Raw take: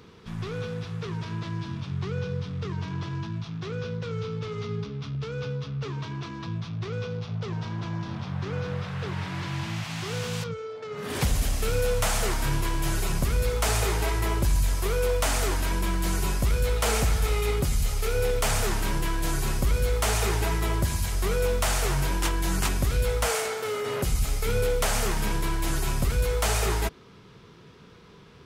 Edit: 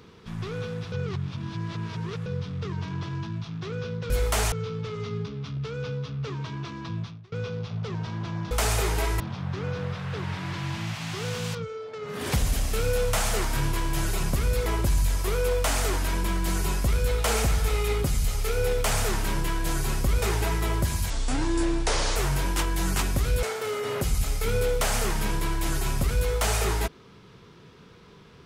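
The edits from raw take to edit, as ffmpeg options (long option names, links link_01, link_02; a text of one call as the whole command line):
ffmpeg -i in.wav -filter_complex "[0:a]asplit=13[link_01][link_02][link_03][link_04][link_05][link_06][link_07][link_08][link_09][link_10][link_11][link_12][link_13];[link_01]atrim=end=0.922[link_14];[link_02]atrim=start=0.918:end=2.262,asetpts=PTS-STARTPTS,areverse[link_15];[link_03]atrim=start=2.258:end=4.102[link_16];[link_04]atrim=start=19.798:end=20.222[link_17];[link_05]atrim=start=4.098:end=6.9,asetpts=PTS-STARTPTS,afade=type=out:start_time=2.512:duration=0.29:curve=qua:silence=0.0668344[link_18];[link_06]atrim=start=6.9:end=8.092,asetpts=PTS-STARTPTS,afade=type=in:duration=0.004:curve=hsin:silence=0.0668344[link_19];[link_07]atrim=start=13.548:end=14.242[link_20];[link_08]atrim=start=8.088:end=13.552[link_21];[link_09]atrim=start=14.238:end=19.802[link_22];[link_10]atrim=start=20.218:end=21.104[link_23];[link_11]atrim=start=21.1:end=21.82,asetpts=PTS-STARTPTS,asetrate=29988,aresample=44100,atrim=end_sample=46694,asetpts=PTS-STARTPTS[link_24];[link_12]atrim=start=21.816:end=23.092[link_25];[link_13]atrim=start=23.438[link_26];[link_14][link_15]acrossfade=duration=0.004:curve1=hsin:curve2=hsin[link_27];[link_27][link_16]acrossfade=duration=0.004:curve1=hsin:curve2=hsin[link_28];[link_28][link_17]acrossfade=duration=0.004:curve1=hsin:curve2=hsin[link_29];[link_18][link_19]concat=n=2:v=0:a=1[link_30];[link_29][link_30]acrossfade=duration=0.004:curve1=hsin:curve2=hsin[link_31];[link_31][link_20]acrossfade=duration=0.004:curve1=hsin:curve2=hsin[link_32];[link_32][link_21]acrossfade=duration=0.004:curve1=hsin:curve2=hsin[link_33];[link_33][link_22]acrossfade=duration=0.004:curve1=hsin:curve2=hsin[link_34];[link_34][link_23]acrossfade=duration=0.004:curve1=hsin:curve2=hsin[link_35];[link_35][link_24]acrossfade=duration=0.004:curve1=hsin:curve2=hsin[link_36];[link_36][link_25]acrossfade=duration=0.004:curve1=hsin:curve2=hsin[link_37];[link_37][link_26]acrossfade=duration=0.004:curve1=hsin:curve2=hsin" out.wav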